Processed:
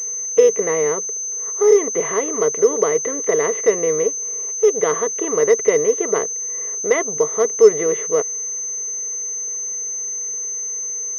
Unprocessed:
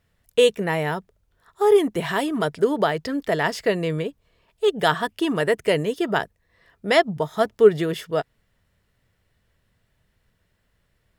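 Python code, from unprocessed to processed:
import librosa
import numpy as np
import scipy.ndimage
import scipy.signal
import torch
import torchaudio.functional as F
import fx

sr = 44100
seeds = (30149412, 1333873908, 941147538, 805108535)

y = fx.bin_compress(x, sr, power=0.6)
y = fx.small_body(y, sr, hz=(460.0, 1100.0, 2000.0), ring_ms=25, db=17)
y = fx.pwm(y, sr, carrier_hz=6200.0)
y = F.gain(torch.from_numpy(y), -13.0).numpy()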